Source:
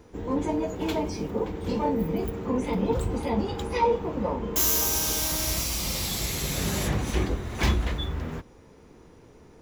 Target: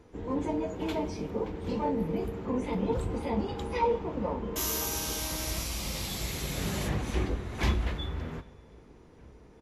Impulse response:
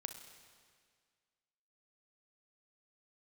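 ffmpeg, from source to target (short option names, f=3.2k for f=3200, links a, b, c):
-filter_complex "[0:a]asplit=2[a][b];[b]adelay=1574,volume=-28dB,highshelf=f=4k:g=-35.4[c];[a][c]amix=inputs=2:normalize=0,asplit=2[d][e];[1:a]atrim=start_sample=2205,lowpass=4.7k[f];[e][f]afir=irnorm=-1:irlink=0,volume=-2.5dB[g];[d][g]amix=inputs=2:normalize=0,volume=-7.5dB" -ar 32000 -c:a libvorbis -b:a 48k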